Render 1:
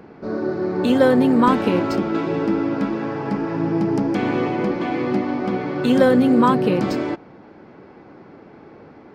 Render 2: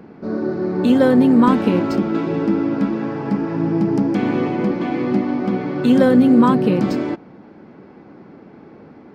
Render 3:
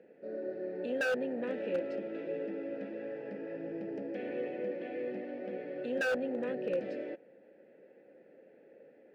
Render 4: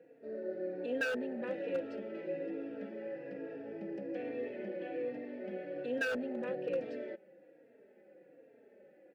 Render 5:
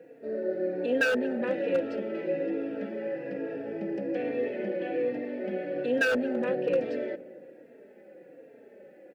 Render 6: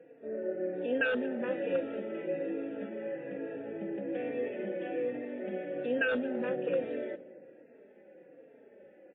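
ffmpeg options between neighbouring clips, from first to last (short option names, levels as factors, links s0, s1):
-af "equalizer=f=210:t=o:w=1.2:g=6.5,volume=0.841"
-filter_complex "[0:a]asoftclip=type=tanh:threshold=0.316,asplit=3[s0][s1][s2];[s0]bandpass=f=530:t=q:w=8,volume=1[s3];[s1]bandpass=f=1840:t=q:w=8,volume=0.501[s4];[s2]bandpass=f=2480:t=q:w=8,volume=0.355[s5];[s3][s4][s5]amix=inputs=3:normalize=0,aeval=exprs='0.0841*(abs(mod(val(0)/0.0841+3,4)-2)-1)':c=same,volume=0.668"
-filter_complex "[0:a]asplit=2[s0][s1];[s1]adelay=3.7,afreqshift=-1.2[s2];[s0][s2]amix=inputs=2:normalize=1,volume=1.12"
-filter_complex "[0:a]asplit=2[s0][s1];[s1]adelay=233,lowpass=f=830:p=1,volume=0.15,asplit=2[s2][s3];[s3]adelay=233,lowpass=f=830:p=1,volume=0.53,asplit=2[s4][s5];[s5]adelay=233,lowpass=f=830:p=1,volume=0.53,asplit=2[s6][s7];[s7]adelay=233,lowpass=f=830:p=1,volume=0.53,asplit=2[s8][s9];[s9]adelay=233,lowpass=f=830:p=1,volume=0.53[s10];[s0][s2][s4][s6][s8][s10]amix=inputs=6:normalize=0,volume=2.82"
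-af "volume=0.631" -ar 8000 -c:a libmp3lame -b:a 16k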